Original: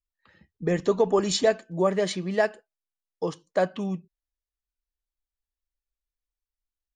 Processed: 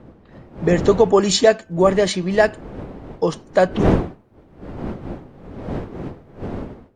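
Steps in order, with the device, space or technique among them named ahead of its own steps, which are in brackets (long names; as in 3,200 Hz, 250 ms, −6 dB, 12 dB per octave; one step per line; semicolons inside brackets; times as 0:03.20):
smartphone video outdoors (wind on the microphone 360 Hz −36 dBFS; automatic gain control gain up to 10 dB; AAC 64 kbit/s 48,000 Hz)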